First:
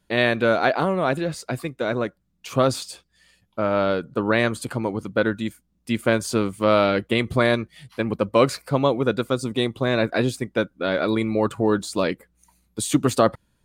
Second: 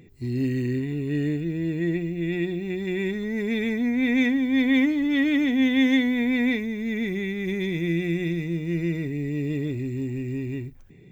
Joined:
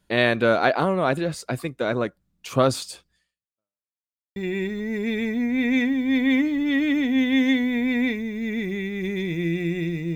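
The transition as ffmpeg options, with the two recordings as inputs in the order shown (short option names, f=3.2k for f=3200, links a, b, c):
-filter_complex "[0:a]apad=whole_dur=10.15,atrim=end=10.15,asplit=2[a][b];[a]atrim=end=3.88,asetpts=PTS-STARTPTS,afade=t=out:st=3.11:d=0.77:c=exp[c];[b]atrim=start=3.88:end=4.36,asetpts=PTS-STARTPTS,volume=0[d];[1:a]atrim=start=2.8:end=8.59,asetpts=PTS-STARTPTS,afade=t=in:d=0.004:c=hsin[e];[c][d][e]concat=n=3:v=0:a=1"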